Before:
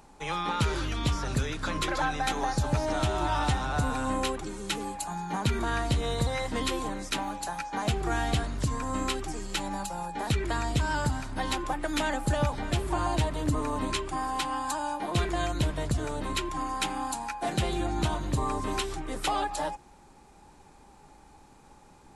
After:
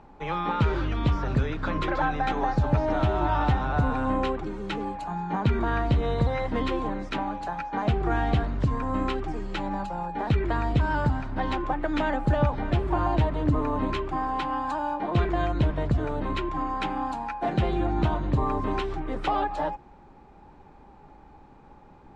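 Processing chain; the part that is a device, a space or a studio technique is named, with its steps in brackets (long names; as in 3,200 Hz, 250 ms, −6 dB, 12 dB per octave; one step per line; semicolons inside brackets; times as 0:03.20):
phone in a pocket (low-pass filter 3,400 Hz 12 dB per octave; high-shelf EQ 2,200 Hz −10 dB)
level +4.5 dB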